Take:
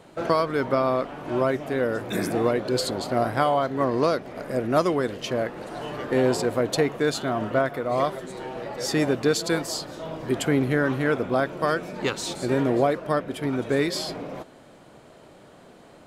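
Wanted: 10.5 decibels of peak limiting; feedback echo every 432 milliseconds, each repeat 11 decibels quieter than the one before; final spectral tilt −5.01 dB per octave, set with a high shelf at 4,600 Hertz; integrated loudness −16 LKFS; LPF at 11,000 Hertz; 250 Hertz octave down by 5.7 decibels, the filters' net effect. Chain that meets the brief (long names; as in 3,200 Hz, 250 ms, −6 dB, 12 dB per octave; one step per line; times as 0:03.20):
low-pass filter 11,000 Hz
parametric band 250 Hz −7.5 dB
high-shelf EQ 4,600 Hz −6.5 dB
brickwall limiter −19 dBFS
repeating echo 432 ms, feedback 28%, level −11 dB
level +14 dB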